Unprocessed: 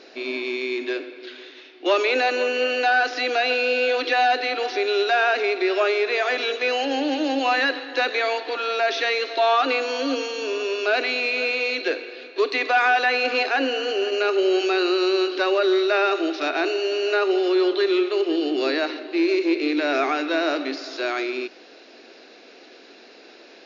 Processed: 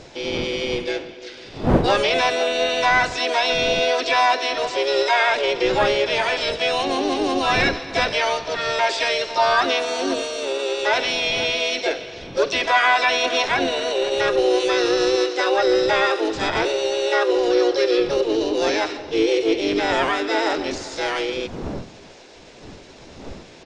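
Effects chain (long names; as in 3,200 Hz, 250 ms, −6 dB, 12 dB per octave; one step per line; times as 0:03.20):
wind on the microphone 360 Hz −36 dBFS
pitch-shifted copies added −3 semitones −14 dB, +5 semitones 0 dB, +7 semitones −16 dB
level −1.5 dB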